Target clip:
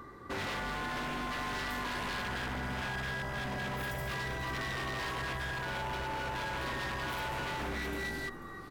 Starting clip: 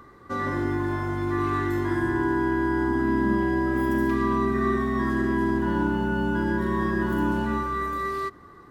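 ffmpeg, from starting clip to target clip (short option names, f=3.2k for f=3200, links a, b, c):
-filter_complex "[0:a]afftfilt=real='re*lt(hypot(re,im),0.2)':imag='im*lt(hypot(re,im),0.2)':win_size=1024:overlap=0.75,asplit=4[a][b][c][d];[b]adelay=490,afreqshift=-50,volume=-14dB[e];[c]adelay=980,afreqshift=-100,volume=-24.2dB[f];[d]adelay=1470,afreqshift=-150,volume=-34.3dB[g];[a][e][f][g]amix=inputs=4:normalize=0,aeval=exprs='0.0266*(abs(mod(val(0)/0.0266+3,4)-2)-1)':c=same"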